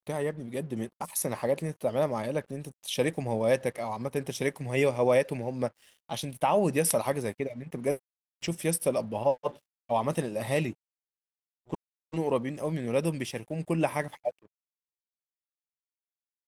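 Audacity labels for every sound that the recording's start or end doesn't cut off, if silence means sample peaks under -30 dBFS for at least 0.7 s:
11.730000	14.290000	sound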